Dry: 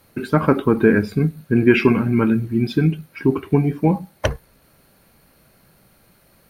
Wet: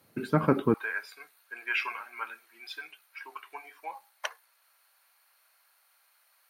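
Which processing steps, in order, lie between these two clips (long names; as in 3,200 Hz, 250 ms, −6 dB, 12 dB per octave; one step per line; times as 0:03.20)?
high-pass filter 100 Hz 24 dB per octave, from 0:00.74 870 Hz
level −8 dB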